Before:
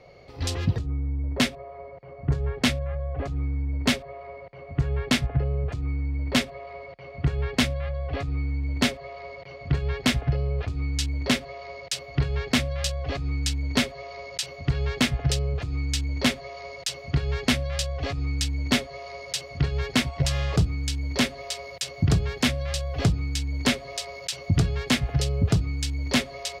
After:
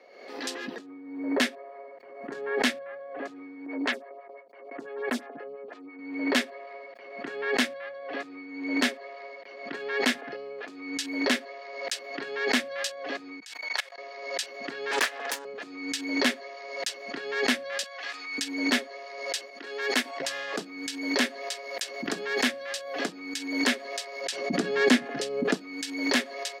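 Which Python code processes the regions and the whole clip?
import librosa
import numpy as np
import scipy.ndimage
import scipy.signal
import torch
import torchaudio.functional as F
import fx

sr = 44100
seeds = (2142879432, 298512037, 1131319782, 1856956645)

y = fx.chain(x, sr, fx.gate_hold(open_db=-30.0, close_db=-35.0, hold_ms=71.0, range_db=-21, attack_ms=1.4, release_ms=100.0),
    fx.high_shelf(hz=6300.0, db=-4.0),
    fx.stagger_phaser(hz=5.9), at=(3.66, 5.99))
y = fx.chain(y, sr, fx.cheby2_highpass(hz=200.0, order=4, stop_db=60),
    fx.level_steps(step_db=23), at=(13.4, 13.98))
y = fx.chain(y, sr, fx.steep_highpass(hz=420.0, slope=96),
    fx.doppler_dist(depth_ms=0.74), at=(14.91, 15.45))
y = fx.chain(y, sr, fx.highpass(hz=1100.0, slope=12),
    fx.sustainer(db_per_s=69.0), at=(17.83, 18.38))
y = fx.chain(y, sr, fx.highpass(hz=250.0, slope=24),
    fx.high_shelf(hz=8700.0, db=5.5),
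    fx.upward_expand(threshold_db=-34.0, expansion=1.5), at=(19.5, 20.2))
y = fx.chain(y, sr, fx.lowpass(hz=12000.0, slope=12),
    fx.low_shelf(hz=410.0, db=11.5), at=(24.21, 25.54))
y = scipy.signal.sosfilt(scipy.signal.butter(8, 230.0, 'highpass', fs=sr, output='sos'), y)
y = fx.peak_eq(y, sr, hz=1700.0, db=9.0, octaves=0.33)
y = fx.pre_swell(y, sr, db_per_s=59.0)
y = y * librosa.db_to_amplitude(-3.5)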